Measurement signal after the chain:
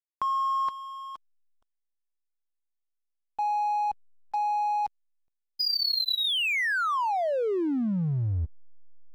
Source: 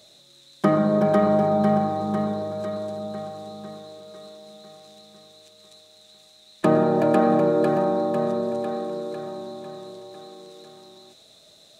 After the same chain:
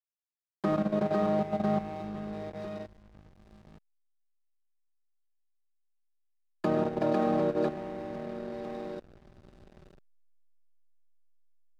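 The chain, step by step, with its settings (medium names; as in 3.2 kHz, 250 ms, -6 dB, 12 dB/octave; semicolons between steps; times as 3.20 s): knee-point frequency compression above 3.7 kHz 4:1; level held to a coarse grid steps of 10 dB; hysteresis with a dead band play -29 dBFS; trim -6 dB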